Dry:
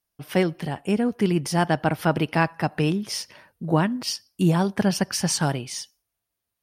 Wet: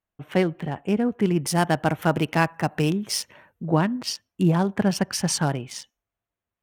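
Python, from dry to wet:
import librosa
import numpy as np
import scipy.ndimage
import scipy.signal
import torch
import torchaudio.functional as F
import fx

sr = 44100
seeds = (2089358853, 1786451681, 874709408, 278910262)

y = fx.wiener(x, sr, points=9)
y = fx.high_shelf(y, sr, hz=6200.0, db=11.5, at=(1.47, 3.64))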